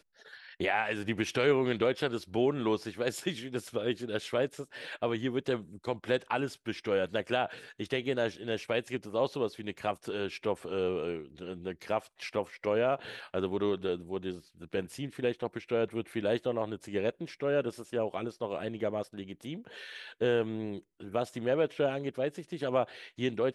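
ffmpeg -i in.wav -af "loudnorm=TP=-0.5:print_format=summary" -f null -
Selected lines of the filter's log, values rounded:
Input Integrated:    -33.1 LUFS
Input True Peak:     -14.7 dBTP
Input LRA:             3.6 LU
Input Threshold:     -43.3 LUFS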